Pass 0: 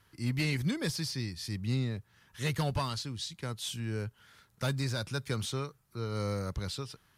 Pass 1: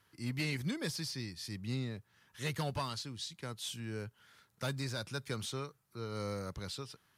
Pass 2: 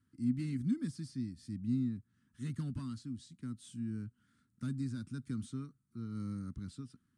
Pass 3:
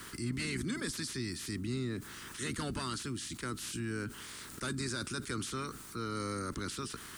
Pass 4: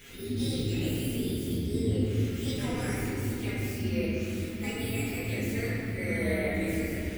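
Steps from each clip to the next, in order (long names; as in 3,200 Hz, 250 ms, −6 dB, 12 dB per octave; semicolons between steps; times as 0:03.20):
high-pass filter 140 Hz 6 dB per octave; level −3.5 dB
drawn EQ curve 170 Hz 0 dB, 250 Hz +10 dB, 500 Hz −24 dB, 820 Hz −26 dB, 1,300 Hz −11 dB, 2,400 Hz −19 dB, 6,000 Hz −16 dB, 8,900 Hz −7 dB, 13,000 Hz −29 dB
ceiling on every frequency bin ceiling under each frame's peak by 26 dB; envelope flattener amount 70%; level −5 dB
partials spread apart or drawn together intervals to 128%; rectangular room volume 180 cubic metres, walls hard, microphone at 1.3 metres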